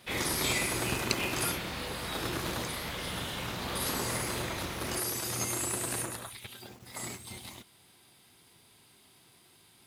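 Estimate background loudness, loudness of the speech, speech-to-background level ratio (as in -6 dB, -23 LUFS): -35.5 LUFS, -34.5 LUFS, 1.0 dB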